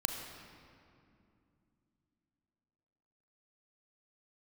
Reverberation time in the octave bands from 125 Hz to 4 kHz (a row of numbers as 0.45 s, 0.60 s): 3.7 s, 3.9 s, 2.8 s, 2.4 s, 2.1 s, 1.6 s